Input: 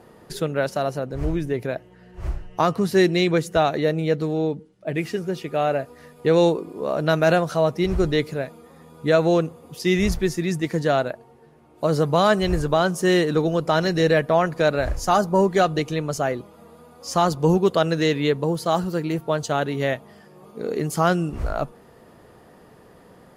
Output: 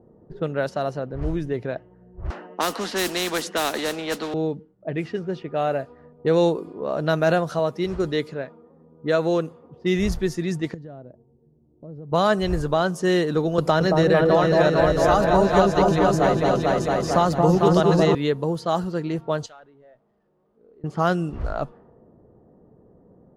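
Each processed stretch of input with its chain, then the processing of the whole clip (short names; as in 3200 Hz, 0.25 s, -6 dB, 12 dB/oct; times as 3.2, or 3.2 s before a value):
2.3–4.34 steep high-pass 220 Hz 48 dB/oct + modulation noise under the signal 23 dB + spectral compressor 2:1
7.59–9.74 HPF 190 Hz 6 dB/oct + bell 720 Hz -4 dB 0.29 oct
10.74–12.12 bell 1100 Hz -13.5 dB 2.6 oct + compressor 3:1, threshold -37 dBFS
13.58–18.15 repeats that get brighter 0.224 s, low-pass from 750 Hz, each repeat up 2 oct, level 0 dB + three-band squash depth 70%
19.46–20.84 zero-crossing step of -34.5 dBFS + pre-emphasis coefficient 0.97 + tube stage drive 33 dB, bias 0.2
whole clip: high shelf 6800 Hz -5.5 dB; low-pass opened by the level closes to 420 Hz, open at -18.5 dBFS; bell 2300 Hz -4.5 dB 0.38 oct; gain -1.5 dB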